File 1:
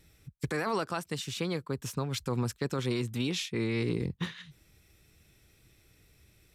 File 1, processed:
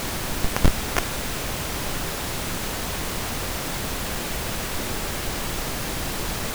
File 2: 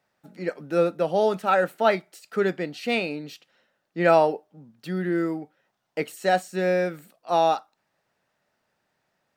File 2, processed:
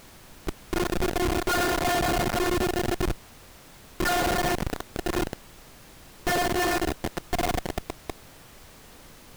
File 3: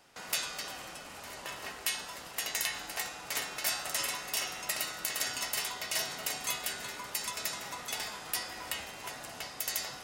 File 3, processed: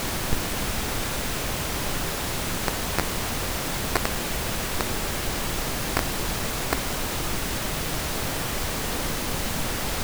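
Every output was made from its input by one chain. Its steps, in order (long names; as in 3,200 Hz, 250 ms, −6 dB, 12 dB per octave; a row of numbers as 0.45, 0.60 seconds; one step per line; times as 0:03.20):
loose part that buzzes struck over −41 dBFS, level −26 dBFS
auto-filter high-pass sine 9.4 Hz 240–1,500 Hz
thirty-one-band graphic EQ 100 Hz −10 dB, 160 Hz +9 dB, 250 Hz −7 dB, 1,600 Hz +10 dB, 8,000 Hz +8 dB, 12,500 Hz −11 dB
feedback delay with all-pass diffusion 534 ms, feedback 52%, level −14 dB
phases set to zero 357 Hz
four-comb reverb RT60 3.8 s, combs from 27 ms, DRR −4 dB
comparator with hysteresis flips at −19 dBFS
background noise pink −47 dBFS
loudness normalisation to −27 LKFS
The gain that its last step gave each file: +19.0, −1.5, +19.5 decibels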